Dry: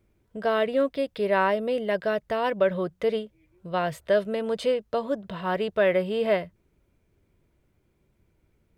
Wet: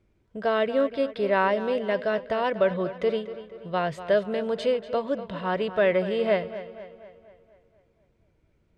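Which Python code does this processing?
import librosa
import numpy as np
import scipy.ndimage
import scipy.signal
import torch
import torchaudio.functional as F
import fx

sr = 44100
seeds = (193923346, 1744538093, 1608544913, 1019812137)

p1 = scipy.signal.sosfilt(scipy.signal.butter(2, 6300.0, 'lowpass', fs=sr, output='sos'), x)
y = p1 + fx.echo_tape(p1, sr, ms=241, feedback_pct=55, wet_db=-12.0, lp_hz=4600.0, drive_db=14.0, wow_cents=10, dry=0)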